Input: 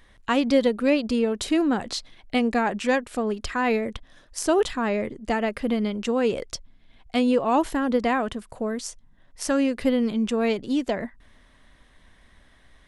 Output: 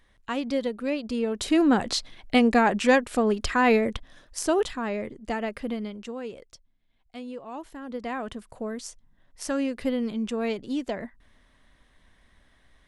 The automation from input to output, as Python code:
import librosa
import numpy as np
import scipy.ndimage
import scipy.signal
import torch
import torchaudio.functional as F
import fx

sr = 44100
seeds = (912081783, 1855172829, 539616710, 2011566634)

y = fx.gain(x, sr, db=fx.line((1.0, -7.5), (1.72, 3.0), (3.87, 3.0), (4.82, -5.0), (5.6, -5.0), (6.53, -17.0), (7.68, -17.0), (8.35, -5.0)))